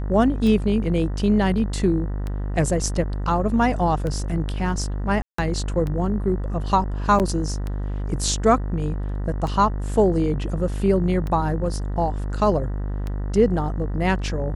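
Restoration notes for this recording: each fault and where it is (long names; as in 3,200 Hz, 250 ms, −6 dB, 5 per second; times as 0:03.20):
mains buzz 50 Hz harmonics 39 −26 dBFS
scratch tick 33 1/3 rpm −17 dBFS
0:05.22–0:05.38: drop-out 164 ms
0:07.19–0:07.20: drop-out 8.5 ms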